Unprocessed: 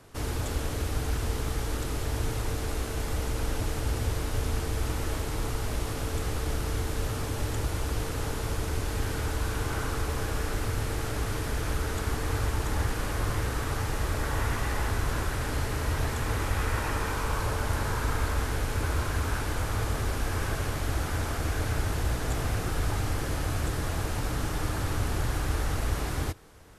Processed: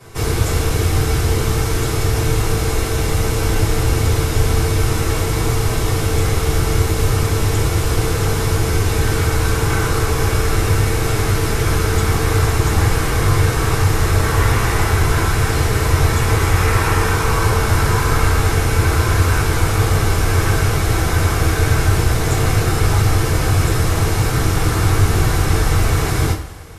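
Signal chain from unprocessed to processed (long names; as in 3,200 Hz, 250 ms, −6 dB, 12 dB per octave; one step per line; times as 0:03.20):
coupled-rooms reverb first 0.24 s, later 1.5 s, from −18 dB, DRR −9.5 dB
level +3.5 dB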